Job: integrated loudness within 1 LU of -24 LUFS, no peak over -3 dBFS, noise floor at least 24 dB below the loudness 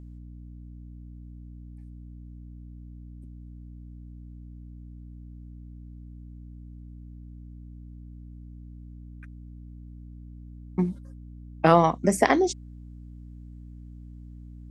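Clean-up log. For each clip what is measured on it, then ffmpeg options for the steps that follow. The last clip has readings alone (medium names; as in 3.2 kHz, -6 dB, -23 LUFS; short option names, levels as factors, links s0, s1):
hum 60 Hz; highest harmonic 300 Hz; hum level -41 dBFS; loudness -23.5 LUFS; peak level -4.0 dBFS; loudness target -24.0 LUFS
-> -af "bandreject=f=60:t=h:w=4,bandreject=f=120:t=h:w=4,bandreject=f=180:t=h:w=4,bandreject=f=240:t=h:w=4,bandreject=f=300:t=h:w=4"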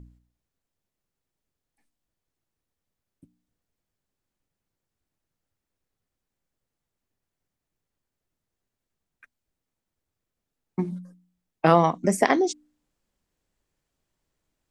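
hum not found; loudness -23.0 LUFS; peak level -3.5 dBFS; loudness target -24.0 LUFS
-> -af "volume=0.891"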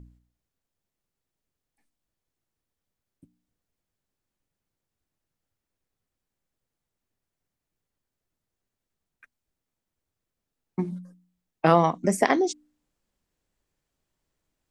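loudness -24.0 LUFS; peak level -4.5 dBFS; noise floor -86 dBFS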